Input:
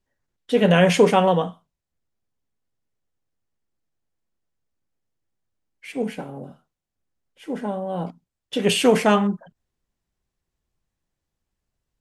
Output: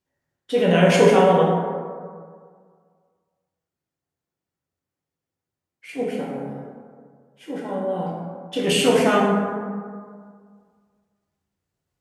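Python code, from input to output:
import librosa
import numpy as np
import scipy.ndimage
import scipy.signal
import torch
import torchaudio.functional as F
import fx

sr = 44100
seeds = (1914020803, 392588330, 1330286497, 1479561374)

p1 = scipy.signal.sosfilt(scipy.signal.butter(2, 77.0, 'highpass', fs=sr, output='sos'), x)
p2 = fx.level_steps(p1, sr, step_db=12)
p3 = p1 + F.gain(torch.from_numpy(p2), 1.0).numpy()
p4 = fx.rev_plate(p3, sr, seeds[0], rt60_s=1.9, hf_ratio=0.4, predelay_ms=0, drr_db=-4.0)
y = F.gain(torch.from_numpy(p4), -8.0).numpy()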